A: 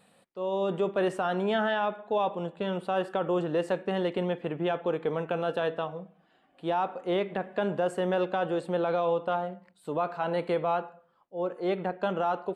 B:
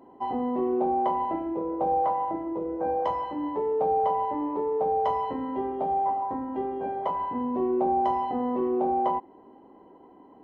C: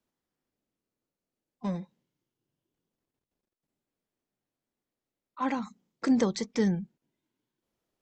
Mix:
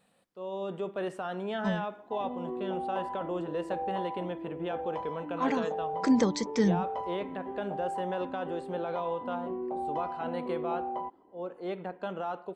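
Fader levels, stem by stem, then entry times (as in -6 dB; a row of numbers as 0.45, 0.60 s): -7.0, -10.0, +0.5 dB; 0.00, 1.90, 0.00 s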